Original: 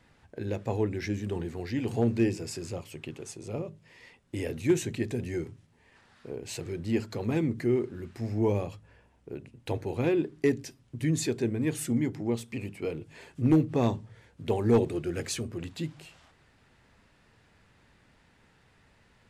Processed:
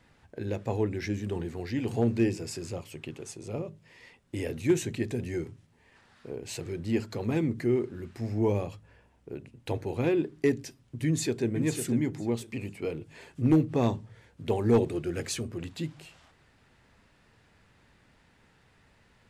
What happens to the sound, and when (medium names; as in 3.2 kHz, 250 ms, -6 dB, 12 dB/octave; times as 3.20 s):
11.05–11.50 s: echo throw 500 ms, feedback 20%, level -8 dB